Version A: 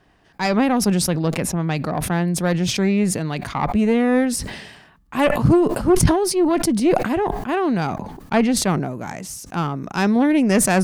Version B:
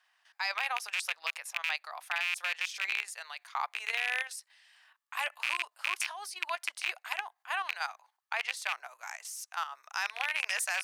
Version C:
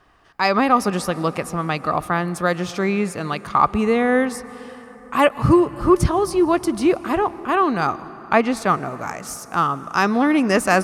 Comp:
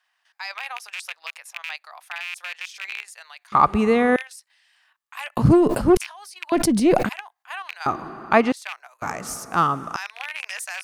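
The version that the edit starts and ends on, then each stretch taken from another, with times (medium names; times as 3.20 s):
B
3.52–4.16 s: from C
5.37–5.97 s: from A
6.52–7.09 s: from A
7.86–8.52 s: from C
9.02–9.96 s: from C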